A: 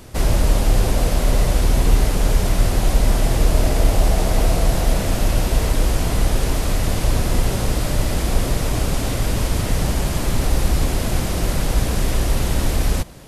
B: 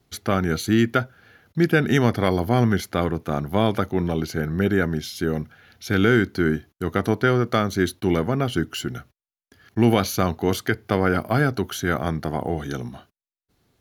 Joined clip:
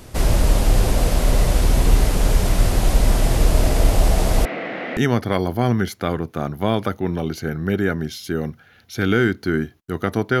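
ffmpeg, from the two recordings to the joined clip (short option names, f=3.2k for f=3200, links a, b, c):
-filter_complex "[0:a]asettb=1/sr,asplit=3[a][b][c];[a]atrim=end=4.454[d];[b]atrim=start=4.45:end=4.97,asetpts=PTS-STARTPTS,afade=t=in:d=0.004:c=qsin,afade=t=out:st=0.516:d=0.004:c=qsin,highpass=f=250:w=0.5412,highpass=f=250:w=1.3066,equalizer=f=390:t=q:w=4:g=-5,equalizer=f=650:t=q:w=4:g=-4,equalizer=f=960:t=q:w=4:g=-9,equalizer=f=2k:t=q:w=4:g=9,lowpass=f=2.7k:w=0.5412,lowpass=f=2.7k:w=1.3066[e];[c]atrim=start=4.966[f];[d][e]acrossfade=d=0.004:c1=hsin:c2=qsin[g];[g][f]acrossfade=d=0.004:c1=qsin:c2=hsin,apad=whole_dur=10.4,atrim=end=10.4,atrim=end=4.972[h];[1:a]atrim=start=1.888:end=7.32[i];[h][i]acrossfade=d=0.004:c1=hsin:c2=hsin"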